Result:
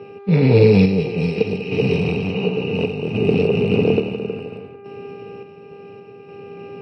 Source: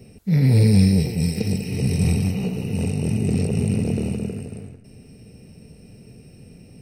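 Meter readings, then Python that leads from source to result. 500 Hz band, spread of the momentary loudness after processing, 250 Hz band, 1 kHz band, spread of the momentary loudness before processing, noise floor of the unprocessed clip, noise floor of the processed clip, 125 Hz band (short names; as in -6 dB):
+13.0 dB, 23 LU, +2.0 dB, +9.5 dB, 12 LU, -47 dBFS, -40 dBFS, -1.0 dB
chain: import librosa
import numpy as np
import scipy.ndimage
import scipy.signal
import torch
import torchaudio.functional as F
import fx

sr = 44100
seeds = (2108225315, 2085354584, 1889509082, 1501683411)

y = fx.dmg_buzz(x, sr, base_hz=400.0, harmonics=6, level_db=-48.0, tilt_db=-8, odd_only=False)
y = fx.cabinet(y, sr, low_hz=130.0, low_slope=24, high_hz=3700.0, hz=(140.0, 220.0, 440.0, 1000.0, 1900.0, 2700.0), db=(-7, -7, 8, 6, -9, 9))
y = fx.tremolo_random(y, sr, seeds[0], hz=3.5, depth_pct=55)
y = y * librosa.db_to_amplitude(8.5)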